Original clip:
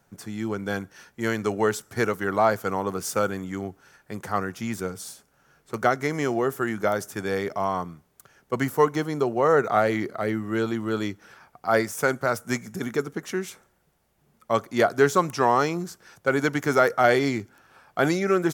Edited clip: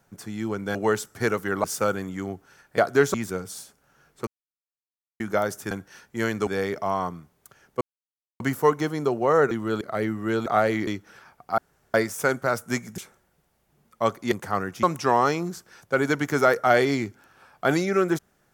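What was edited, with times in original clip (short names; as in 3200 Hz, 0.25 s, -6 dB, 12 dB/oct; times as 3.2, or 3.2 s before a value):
0.75–1.51 move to 7.21
2.4–2.99 cut
4.13–4.64 swap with 14.81–15.17
5.77–6.7 mute
8.55 insert silence 0.59 s
9.66–10.07 swap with 10.72–11.02
11.73 insert room tone 0.36 s
12.77–13.47 cut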